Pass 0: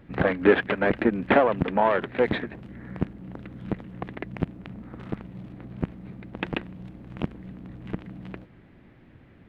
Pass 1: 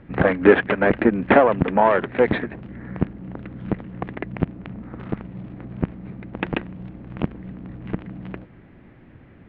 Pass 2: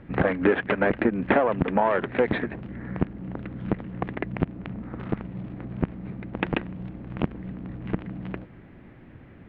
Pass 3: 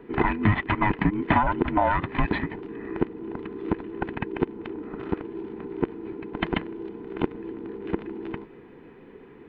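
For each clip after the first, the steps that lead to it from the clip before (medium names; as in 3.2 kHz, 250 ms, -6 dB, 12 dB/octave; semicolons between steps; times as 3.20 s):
low-pass 2.8 kHz 12 dB/octave; trim +5 dB
compression 3:1, threshold -19 dBFS, peak gain reduction 9.5 dB
every band turned upside down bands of 500 Hz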